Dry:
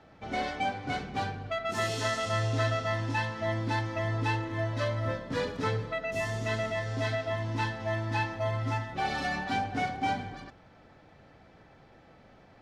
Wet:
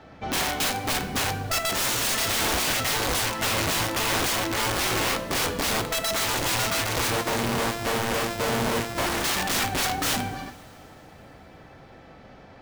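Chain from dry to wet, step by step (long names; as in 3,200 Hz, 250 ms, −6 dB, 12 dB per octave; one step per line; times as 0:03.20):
0:07.10–0:09.24: samples sorted by size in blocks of 128 samples
wrap-around overflow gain 28.5 dB
coupled-rooms reverb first 0.4 s, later 3.4 s, from −18 dB, DRR 9.5 dB
level +8 dB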